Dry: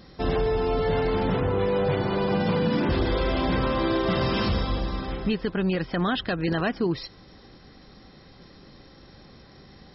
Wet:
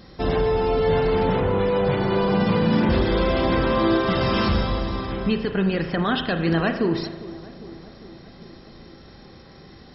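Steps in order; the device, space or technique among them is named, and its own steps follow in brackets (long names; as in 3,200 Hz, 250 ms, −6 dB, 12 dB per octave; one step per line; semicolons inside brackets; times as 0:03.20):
dub delay into a spring reverb (feedback echo with a low-pass in the loop 402 ms, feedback 71%, low-pass 1,400 Hz, level −17 dB; spring reverb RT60 1.1 s, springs 36 ms, chirp 45 ms, DRR 6.5 dB)
level +2.5 dB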